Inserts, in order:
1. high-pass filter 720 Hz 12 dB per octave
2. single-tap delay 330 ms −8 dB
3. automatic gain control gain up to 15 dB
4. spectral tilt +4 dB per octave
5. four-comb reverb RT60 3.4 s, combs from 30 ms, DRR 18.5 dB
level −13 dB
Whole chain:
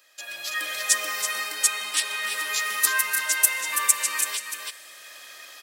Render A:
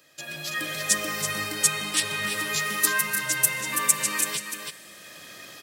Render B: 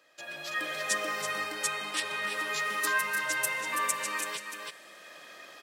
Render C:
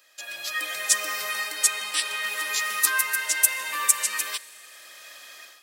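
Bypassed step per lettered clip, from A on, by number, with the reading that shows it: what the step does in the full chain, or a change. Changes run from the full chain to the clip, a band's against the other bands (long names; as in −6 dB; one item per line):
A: 1, 500 Hz band +6.5 dB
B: 4, 8 kHz band −10.0 dB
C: 2, change in momentary loudness spread +1 LU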